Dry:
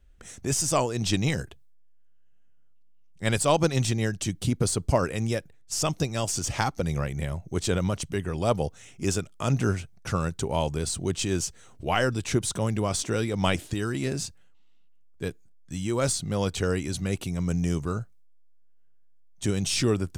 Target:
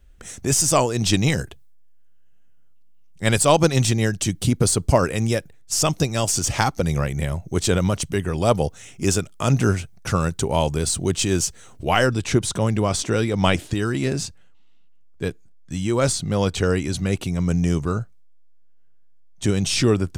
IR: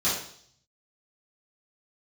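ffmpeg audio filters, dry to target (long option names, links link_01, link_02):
-af "asetnsamples=nb_out_samples=441:pad=0,asendcmd='12.06 highshelf g -6.5',highshelf=frequency=8600:gain=4,volume=6dB"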